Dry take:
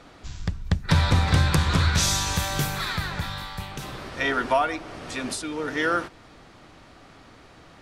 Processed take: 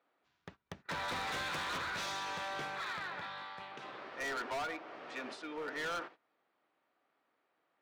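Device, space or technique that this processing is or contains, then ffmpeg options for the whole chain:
walkie-talkie: -filter_complex "[0:a]asettb=1/sr,asplit=3[link_01][link_02][link_03];[link_01]atrim=end=1.084[link_04];[link_02]atrim=start=1.08:end=1.78,asetpts=PTS-STARTPTS,afade=type=in:duration=0.004:curve=qsin,afade=type=out:start_time=0.696:duration=0.004:curve=qsin,highshelf=frequency=2000:gain=7.5[link_05];[link_03]atrim=start=1.776[link_06];[link_04][link_05]acrossfade=duration=0.004:curve1=hsin:curve2=qsin[link_07];[link_07][link_06]acrossfade=duration=0.004:curve1=qsin:curve2=hsin,highpass=410,lowpass=2700,asoftclip=type=hard:threshold=-28dB,agate=range=-19dB:threshold=-45dB:ratio=16:detection=peak,volume=-7.5dB"

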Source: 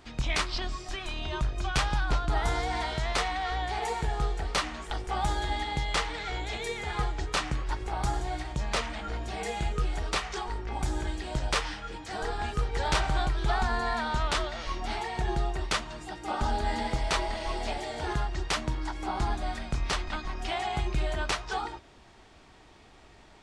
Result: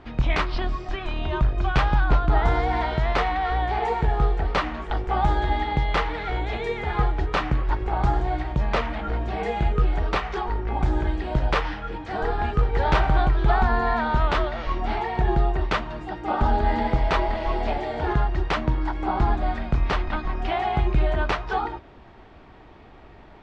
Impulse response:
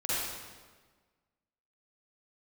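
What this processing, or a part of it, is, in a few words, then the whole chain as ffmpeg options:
phone in a pocket: -af "lowpass=3400,highshelf=frequency=2200:gain=-9.5,volume=8.5dB"

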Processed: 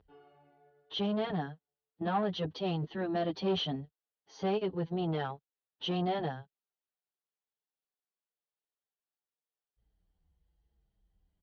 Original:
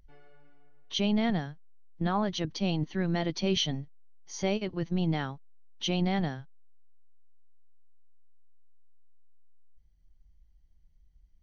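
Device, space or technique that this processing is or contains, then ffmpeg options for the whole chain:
barber-pole flanger into a guitar amplifier: -filter_complex "[0:a]asplit=2[link_01][link_02];[link_02]adelay=7.2,afreqshift=-0.9[link_03];[link_01][link_03]amix=inputs=2:normalize=1,asoftclip=type=tanh:threshold=-29.5dB,highpass=82,equalizer=frequency=130:width_type=q:width=4:gain=-6,equalizer=frequency=230:width_type=q:width=4:gain=-4,equalizer=frequency=440:width_type=q:width=4:gain=7,equalizer=frequency=760:width_type=q:width=4:gain=5,equalizer=frequency=2200:width_type=q:width=4:gain=-9,lowpass=frequency=3800:width=0.5412,lowpass=frequency=3800:width=1.3066,volume=3dB"

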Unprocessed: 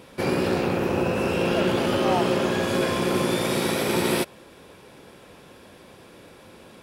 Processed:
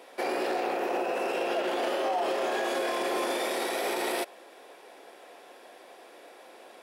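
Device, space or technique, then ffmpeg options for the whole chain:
laptop speaker: -filter_complex "[0:a]asettb=1/sr,asplit=3[link_01][link_02][link_03];[link_01]atrim=end=1.754[link_04];[link_02]atrim=start=1.75:end=3.64,asetpts=PTS-STARTPTS,afade=type=in:duration=0.004:curve=qsin,afade=type=out:start_time=1.886:duration=0.004:curve=qsin,asplit=2[link_05][link_06];[link_06]adelay=26,volume=-2.5dB[link_07];[link_05][link_07]amix=inputs=2:normalize=0,atrim=end_sample=83349[link_08];[link_03]atrim=start=3.636[link_09];[link_04][link_08]acrossfade=duration=0.004:curve1=hsin:curve2=qsin[link_10];[link_10][link_09]acrossfade=duration=0.004:curve1=qsin:curve2=hsin,highpass=frequency=330:width=0.5412,highpass=frequency=330:width=1.3066,equalizer=frequency=720:width_type=o:width=0.36:gain=10.5,equalizer=frequency=1900:width_type=o:width=0.28:gain=4.5,alimiter=limit=-17.5dB:level=0:latency=1:release=39,volume=-3.5dB"

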